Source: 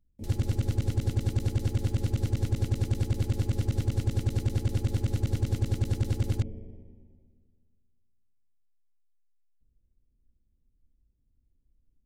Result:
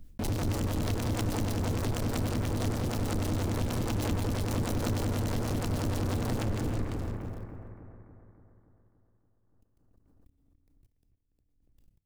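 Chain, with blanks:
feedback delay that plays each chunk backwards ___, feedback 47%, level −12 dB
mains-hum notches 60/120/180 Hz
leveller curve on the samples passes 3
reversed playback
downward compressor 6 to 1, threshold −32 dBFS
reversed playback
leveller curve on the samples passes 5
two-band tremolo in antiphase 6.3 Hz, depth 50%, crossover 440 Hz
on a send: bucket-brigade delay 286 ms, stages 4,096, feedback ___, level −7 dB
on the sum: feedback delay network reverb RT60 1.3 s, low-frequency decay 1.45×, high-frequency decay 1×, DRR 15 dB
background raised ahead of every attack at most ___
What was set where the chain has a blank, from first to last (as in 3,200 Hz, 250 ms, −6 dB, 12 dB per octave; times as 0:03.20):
171 ms, 57%, 39 dB per second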